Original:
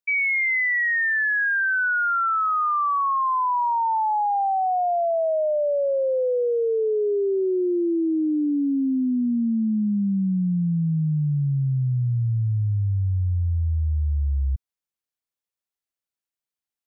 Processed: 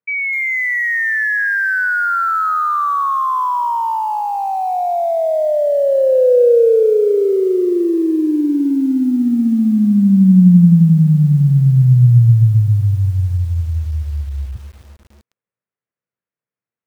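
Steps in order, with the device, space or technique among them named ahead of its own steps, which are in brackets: bass cabinet (speaker cabinet 82–2200 Hz, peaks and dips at 120 Hz +8 dB, 180 Hz +9 dB, 480 Hz +7 dB, 810 Hz -4 dB); lo-fi delay 0.253 s, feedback 55%, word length 7-bit, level -12 dB; gain +5.5 dB

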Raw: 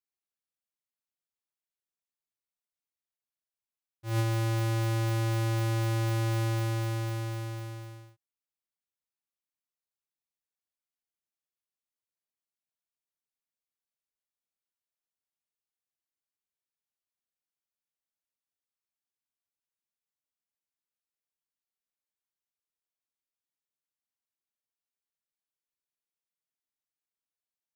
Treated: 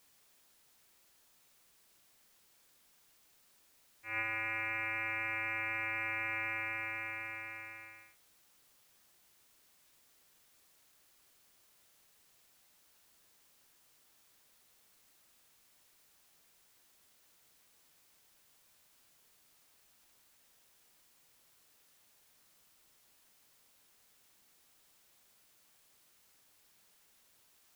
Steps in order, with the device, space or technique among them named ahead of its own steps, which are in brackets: scrambled radio voice (BPF 380–3100 Hz; inverted band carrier 2700 Hz; white noise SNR 21 dB)

